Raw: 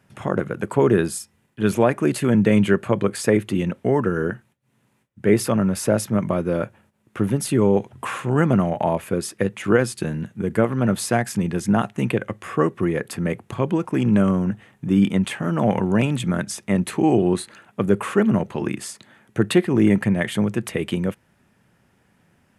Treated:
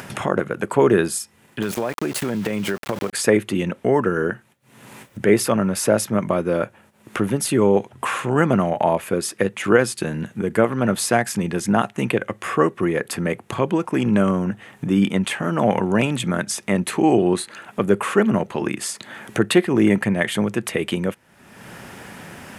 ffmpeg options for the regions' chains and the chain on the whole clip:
-filter_complex "[0:a]asettb=1/sr,asplit=3[s0][s1][s2];[s0]atrim=end=1.624[s3];[s1]atrim=start=1.62:end=3.13,asetpts=PTS-STARTPTS,afade=t=in:d=0.004:c=qsin,afade=t=out:st=1.506:d=0.004:c=qsin,aeval=exprs='val(0)*gte(abs(val(0)),0.0355)':c=same,acompressor=threshold=0.1:ratio=12:attack=3.2:release=140:knee=1:detection=peak[s4];[s2]atrim=start=3.126[s5];[s3][s4]acrossfade=d=0.004:c1=hsin:c2=qsin[s6];[s6][s5]acrossfade=d=0.004:c1=qsin:c2=hsin,lowshelf=f=200:g=-10,acompressor=mode=upward:threshold=0.0631:ratio=2.5,volume=1.58"

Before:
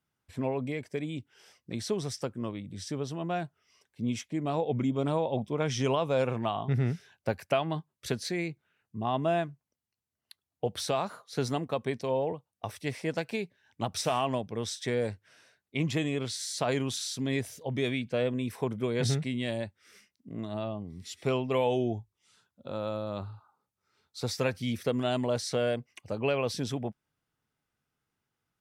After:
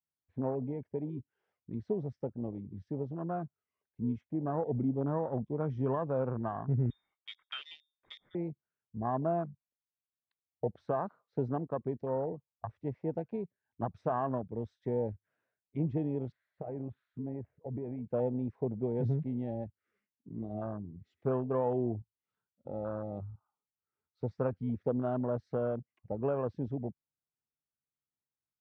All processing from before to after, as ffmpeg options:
-filter_complex "[0:a]asettb=1/sr,asplit=3[s0][s1][s2];[s0]atrim=end=6.904[s3];[s1]atrim=start=6.9:end=8.35,asetpts=PTS-STARTPTS,afade=t=in:d=0.004:c=qsin,afade=t=out:st=1.446:d=0.004:c=qsin,bandreject=f=50:t=h:w=6,bandreject=f=100:t=h:w=6,bandreject=f=150:t=h:w=6,bandreject=f=200:t=h:w=6,bandreject=f=250:t=h:w=6,bandreject=f=300:t=h:w=6,bandreject=f=350:t=h:w=6,bandreject=f=400:t=h:w=6,bandreject=f=450:t=h:w=6,bandreject=f=500:t=h:w=6,lowpass=f=3200:t=q:w=0.5098,lowpass=f=3200:t=q:w=0.6013,lowpass=f=3200:t=q:w=0.9,lowpass=f=3200:t=q:w=2.563,afreqshift=-3800[s4];[s2]atrim=start=8.346[s5];[s3][s4]acrossfade=d=0.004:c1=hsin:c2=qsin[s6];[s6][s5]acrossfade=d=0.004:c1=qsin:c2=hsin,asettb=1/sr,asplit=3[s7][s8][s9];[s7]atrim=end=16.324[s10];[s8]atrim=start=16.32:end=18.04,asetpts=PTS-STARTPTS,afade=t=in:d=0.004:c=qsin,afade=t=out:st=1.716:d=0.004:c=qsin,lowpass=f=2300:w=0.5412,lowpass=f=2300:w=1.3066,acompressor=threshold=0.0282:ratio=8:attack=3.2:release=140:knee=1:detection=peak[s11];[s9]atrim=start=18.036[s12];[s10][s11]acrossfade=d=0.004:c1=hsin:c2=qsin[s13];[s13][s12]acrossfade=d=0.004:c1=qsin:c2=hsin,afwtdn=0.0251,lowpass=1400,adynamicequalizer=threshold=0.00794:dfrequency=630:dqfactor=1.2:tfrequency=630:tqfactor=1.2:attack=5:release=100:ratio=0.375:range=2:mode=cutabove:tftype=bell,volume=0.794"

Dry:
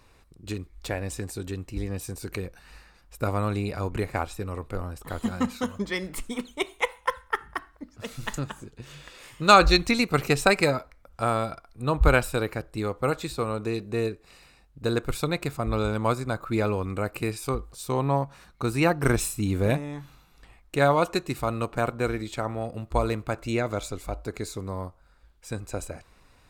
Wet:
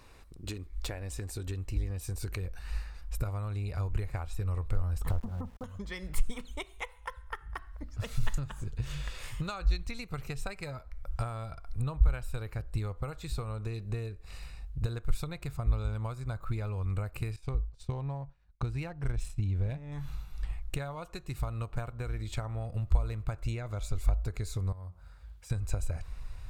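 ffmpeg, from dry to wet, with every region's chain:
-filter_complex "[0:a]asettb=1/sr,asplit=3[s0][s1][s2];[s0]atrim=end=5.104[s3];[s1]atrim=start=5.1:end=5.64,asetpts=PTS-STARTPTS,afade=t=in:d=0.004:c=qsin,afade=t=out:st=0.536:d=0.004:c=qsin,lowpass=f=1100:w=0.5412,lowpass=f=1100:w=1.3066,acontrast=33,aeval=exprs='val(0)*gte(abs(val(0)),0.0112)':c=same[s4];[s2]atrim=start=5.636[s5];[s3][s4]acrossfade=d=0.004:c1=hsin:c2=qsin[s6];[s6][s5]acrossfade=d=0.004:c1=qsin:c2=hsin,asettb=1/sr,asplit=3[s7][s8][s9];[s7]atrim=end=17.364[s10];[s8]atrim=start=17.36:end=19.92,asetpts=PTS-STARTPTS,afade=t=in:d=0.004:c=qsin,afade=t=out:st=2.556:d=0.004:c=qsin,equalizer=f=1200:t=o:w=0.48:g=-5.5,adynamicsmooth=sensitivity=4:basefreq=3800,agate=range=0.0224:threshold=0.00891:ratio=3:release=100:detection=peak[s11];[s9]atrim=start=19.916[s12];[s10][s11]acrossfade=d=0.004:c1=hsin:c2=qsin[s13];[s13][s12]acrossfade=d=0.004:c1=qsin:c2=hsin,asettb=1/sr,asplit=3[s14][s15][s16];[s14]atrim=end=24.724[s17];[s15]atrim=start=24.72:end=25.5,asetpts=PTS-STARTPTS,afade=t=in:d=0.004:c=qsin,afade=t=out:st=0.776:d=0.004:c=qsin,highpass=f=62:w=0.5412,highpass=f=62:w=1.3066,acompressor=threshold=0.00141:ratio=2:attack=3.2:release=140:knee=1:detection=peak,bandreject=f=60:t=h:w=6,bandreject=f=120:t=h:w=6,bandreject=f=180:t=h:w=6,bandreject=f=240:t=h:w=6,bandreject=f=300:t=h:w=6,bandreject=f=360:t=h:w=6,bandreject=f=420:t=h:w=6[s18];[s16]atrim=start=25.496[s19];[s17][s18]acrossfade=d=0.004:c1=hsin:c2=qsin[s20];[s20][s19]acrossfade=d=0.004:c1=qsin:c2=hsin,acompressor=threshold=0.0141:ratio=16,asubboost=boost=11:cutoff=81,volume=1.19"

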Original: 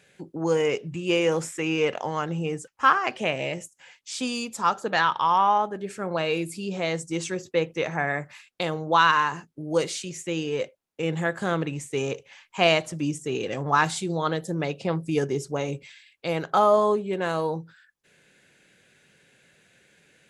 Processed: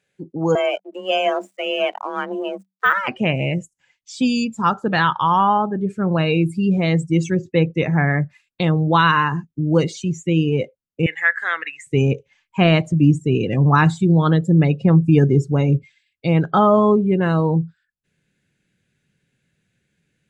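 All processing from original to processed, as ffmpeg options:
-filter_complex "[0:a]asettb=1/sr,asplit=3[s0][s1][s2];[s0]atrim=end=0.554[s3];[s1]atrim=start=0.55:end=3.08,asetpts=PTS-STARTPTS,afade=t=in:d=0.004:c=qsin,afade=t=out:st=2.526:d=0.004:c=qsin,aeval=exprs='sgn(val(0))*max(abs(val(0))-0.015,0)':c=same,afreqshift=190[s4];[s2]atrim=start=3.076[s5];[s3][s4]acrossfade=d=0.004:c1=hsin:c2=qsin[s6];[s6][s5]acrossfade=d=0.004:c1=qsin:c2=hsin,asettb=1/sr,asplit=3[s7][s8][s9];[s7]atrim=end=11.064[s10];[s8]atrim=start=11.06:end=11.87,asetpts=PTS-STARTPTS,afade=t=in:d=0.004:c=qsin,afade=t=out:st=0.806:d=0.004:c=qsin,highpass=1100,equalizer=f=1900:t=o:w=0.68:g=12.5[s11];[s9]atrim=start=11.866[s12];[s10][s11]acrossfade=d=0.004:c1=hsin:c2=qsin[s13];[s13][s12]acrossfade=d=0.004:c1=qsin:c2=hsin,deesser=0.7,afftdn=nr=19:nf=-35,asubboost=boost=5:cutoff=240,volume=2"

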